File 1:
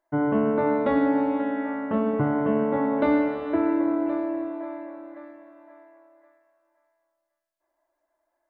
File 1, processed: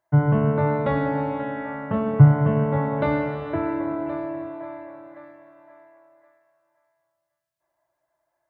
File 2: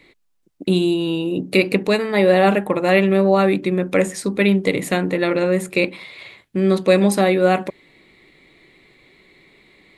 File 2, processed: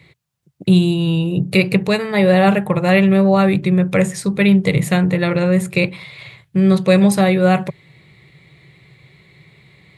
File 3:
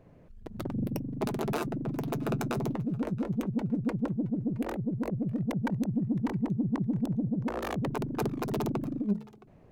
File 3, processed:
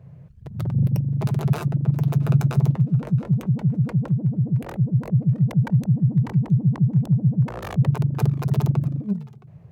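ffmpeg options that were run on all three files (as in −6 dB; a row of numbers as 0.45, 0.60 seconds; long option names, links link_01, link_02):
-af "highpass=87,lowshelf=frequency=190:width_type=q:width=3:gain=10.5,volume=1.5dB"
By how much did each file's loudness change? +2.0, +2.5, +10.5 LU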